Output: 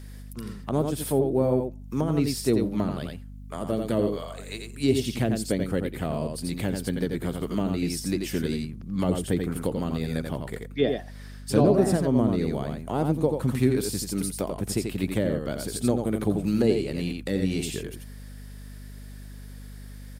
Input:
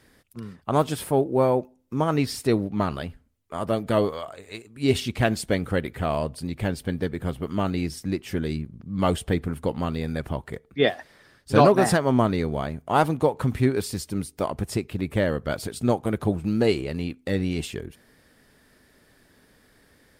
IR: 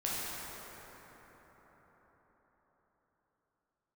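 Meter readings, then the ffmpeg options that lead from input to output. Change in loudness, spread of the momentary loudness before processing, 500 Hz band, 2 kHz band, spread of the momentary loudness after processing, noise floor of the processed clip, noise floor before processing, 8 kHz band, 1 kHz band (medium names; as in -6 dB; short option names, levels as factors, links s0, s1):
-1.5 dB, 12 LU, -2.0 dB, -6.5 dB, 19 LU, -41 dBFS, -60 dBFS, +2.5 dB, -9.0 dB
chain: -filter_complex "[0:a]aecho=1:1:86:0.531,acrossover=split=520[s0][s1];[s1]acompressor=threshold=0.0126:ratio=6[s2];[s0][s2]amix=inputs=2:normalize=0,highpass=120,highshelf=f=3600:g=10.5,aeval=exprs='val(0)+0.01*(sin(2*PI*50*n/s)+sin(2*PI*2*50*n/s)/2+sin(2*PI*3*50*n/s)/3+sin(2*PI*4*50*n/s)/4+sin(2*PI*5*50*n/s)/5)':c=same"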